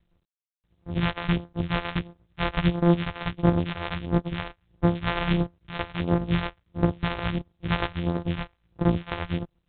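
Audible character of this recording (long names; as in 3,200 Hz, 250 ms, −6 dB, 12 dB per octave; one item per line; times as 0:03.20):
a buzz of ramps at a fixed pitch in blocks of 256 samples
phaser sweep stages 2, 1.5 Hz, lowest notch 190–2,600 Hz
tremolo triangle 8.7 Hz, depth 55%
G.726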